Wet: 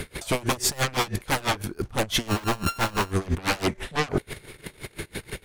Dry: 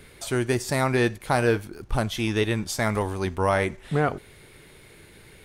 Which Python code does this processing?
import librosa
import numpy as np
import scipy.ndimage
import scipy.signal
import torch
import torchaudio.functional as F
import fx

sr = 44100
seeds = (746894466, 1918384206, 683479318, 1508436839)

y = fx.sample_sort(x, sr, block=32, at=(2.27, 3.1), fade=0.02)
y = fx.fold_sine(y, sr, drive_db=16, ceiling_db=-9.0)
y = fx.level_steps(y, sr, step_db=10)
y = y * 10.0 ** (-23 * (0.5 - 0.5 * np.cos(2.0 * np.pi * 6.0 * np.arange(len(y)) / sr)) / 20.0)